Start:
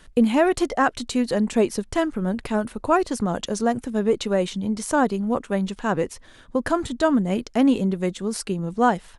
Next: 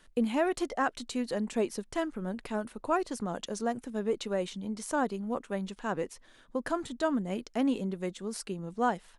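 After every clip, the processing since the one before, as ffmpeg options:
-af "equalizer=f=66:t=o:w=1.6:g=-12.5,volume=-9dB"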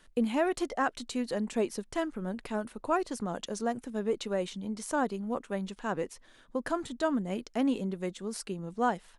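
-af anull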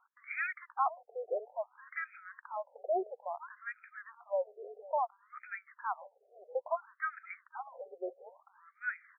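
-af "lowpass=f=2.8k:t=q:w=3.7,aecho=1:1:506|1012|1518:0.112|0.0415|0.0154,afftfilt=real='re*between(b*sr/1024,530*pow(1800/530,0.5+0.5*sin(2*PI*0.59*pts/sr))/1.41,530*pow(1800/530,0.5+0.5*sin(2*PI*0.59*pts/sr))*1.41)':imag='im*between(b*sr/1024,530*pow(1800/530,0.5+0.5*sin(2*PI*0.59*pts/sr))/1.41,530*pow(1800/530,0.5+0.5*sin(2*PI*0.59*pts/sr))*1.41)':win_size=1024:overlap=0.75"

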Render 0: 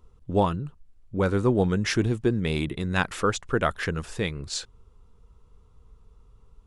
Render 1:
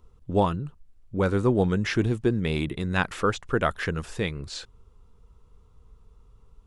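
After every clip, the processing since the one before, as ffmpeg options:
-filter_complex "[0:a]acrossover=split=4100[a][b];[b]acompressor=threshold=-41dB:ratio=4:attack=1:release=60[c];[a][c]amix=inputs=2:normalize=0"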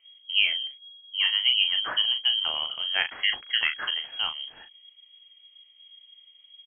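-filter_complex "[0:a]lowpass=f=2.8k:t=q:w=0.5098,lowpass=f=2.8k:t=q:w=0.6013,lowpass=f=2.8k:t=q:w=0.9,lowpass=f=2.8k:t=q:w=2.563,afreqshift=-3300,asplit=2[a][b];[b]adelay=38,volume=-8dB[c];[a][c]amix=inputs=2:normalize=0,volume=-2dB"

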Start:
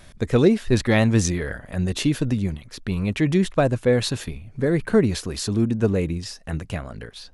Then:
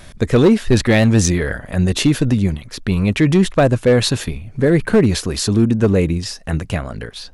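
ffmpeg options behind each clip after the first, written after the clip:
-filter_complex "[0:a]asplit=2[a][b];[b]alimiter=limit=-13.5dB:level=0:latency=1:release=57,volume=-3dB[c];[a][c]amix=inputs=2:normalize=0,volume=9dB,asoftclip=hard,volume=-9dB,volume=3dB"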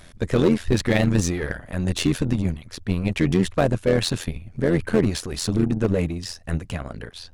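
-af "aeval=exprs='0.531*(cos(1*acos(clip(val(0)/0.531,-1,1)))-cos(1*PI/2))+0.0211*(cos(8*acos(clip(val(0)/0.531,-1,1)))-cos(8*PI/2))':c=same,tremolo=f=86:d=0.75,volume=-3.5dB"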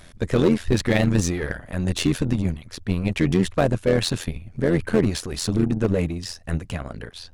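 -af anull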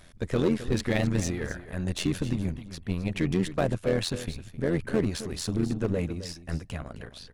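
-af "aecho=1:1:263:0.211,volume=-6.5dB"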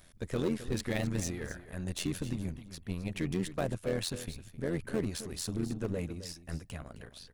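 -af "highshelf=f=8.7k:g=11.5,volume=-7dB"

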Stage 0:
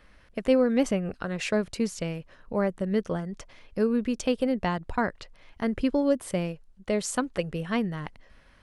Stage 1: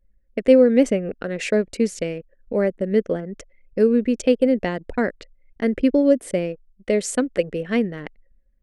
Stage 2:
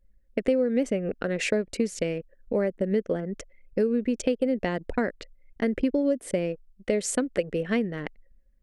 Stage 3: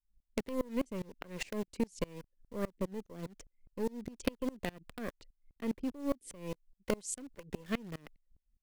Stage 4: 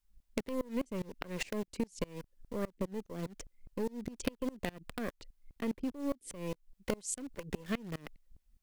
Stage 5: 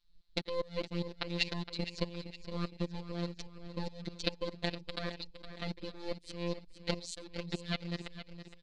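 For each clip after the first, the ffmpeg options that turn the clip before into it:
-af "equalizer=f=125:t=o:w=1:g=-7,equalizer=f=250:t=o:w=1:g=7,equalizer=f=500:t=o:w=1:g=10,equalizer=f=1k:t=o:w=1:g=-9,equalizer=f=2k:t=o:w=1:g=8,equalizer=f=8k:t=o:w=1:g=6,anlmdn=1,adynamicequalizer=threshold=0.0178:dfrequency=1700:dqfactor=0.7:tfrequency=1700:tqfactor=0.7:attack=5:release=100:ratio=0.375:range=1.5:mode=cutabove:tftype=highshelf"
-af "acompressor=threshold=-22dB:ratio=4"
-filter_complex "[0:a]acrossover=split=370|2700[a][b][c];[b]acrusher=bits=4:dc=4:mix=0:aa=0.000001[d];[a][d][c]amix=inputs=3:normalize=0,aeval=exprs='val(0)*pow(10,-27*if(lt(mod(-4.9*n/s,1),2*abs(-4.9)/1000),1-mod(-4.9*n/s,1)/(2*abs(-4.9)/1000),(mod(-4.9*n/s,1)-2*abs(-4.9)/1000)/(1-2*abs(-4.9)/1000))/20)':c=same,volume=-3dB"
-af "acompressor=threshold=-47dB:ratio=2,volume=8.5dB"
-filter_complex "[0:a]afftfilt=real='hypot(re,im)*cos(PI*b)':imag='0':win_size=1024:overlap=0.75,lowpass=f=4.1k:t=q:w=7.1,asplit=2[a][b];[b]aecho=0:1:464|928|1392|1856|2320:0.251|0.113|0.0509|0.0229|0.0103[c];[a][c]amix=inputs=2:normalize=0,volume=3dB"

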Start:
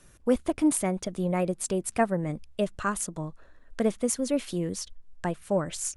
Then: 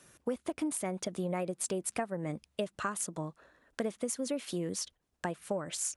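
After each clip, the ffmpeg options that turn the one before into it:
-af "highpass=86,lowshelf=f=180:g=-7.5,acompressor=threshold=-30dB:ratio=12"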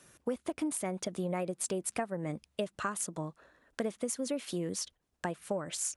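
-af anull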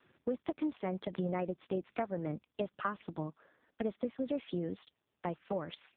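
-ar 8000 -c:a libopencore_amrnb -b:a 4750

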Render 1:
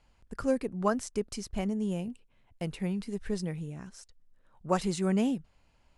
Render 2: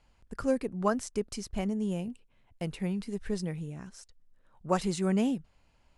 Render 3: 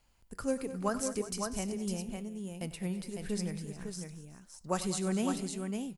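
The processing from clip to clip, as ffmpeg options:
-af anull
-af "aemphasis=mode=production:type=50fm,aecho=1:1:96|193|212|358|554:0.158|0.126|0.141|0.141|0.562,flanger=delay=9.6:depth=1.6:regen=88:speed=0.88:shape=triangular"

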